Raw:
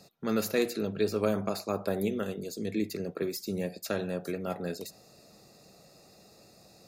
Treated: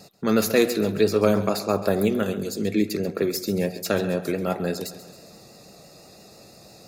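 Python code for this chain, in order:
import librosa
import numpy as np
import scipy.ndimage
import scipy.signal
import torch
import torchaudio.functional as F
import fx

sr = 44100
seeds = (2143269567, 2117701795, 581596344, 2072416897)

p1 = fx.vibrato(x, sr, rate_hz=6.0, depth_cents=38.0)
p2 = p1 + fx.echo_feedback(p1, sr, ms=135, feedback_pct=54, wet_db=-14.5, dry=0)
y = p2 * 10.0 ** (8.5 / 20.0)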